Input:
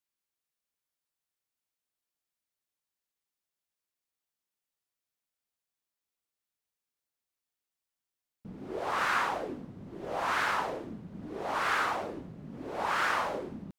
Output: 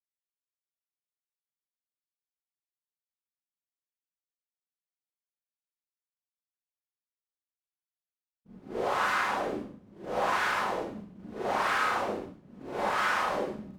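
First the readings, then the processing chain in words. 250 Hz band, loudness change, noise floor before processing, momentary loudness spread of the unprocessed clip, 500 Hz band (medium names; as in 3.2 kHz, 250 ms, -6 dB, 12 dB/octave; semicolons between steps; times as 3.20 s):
+1.5 dB, +1.5 dB, under -85 dBFS, 15 LU, +4.0 dB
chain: expander -33 dBFS; compression 4:1, threshold -36 dBFS, peak gain reduction 10 dB; Schroeder reverb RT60 0.43 s, combs from 30 ms, DRR -6 dB; trim +2.5 dB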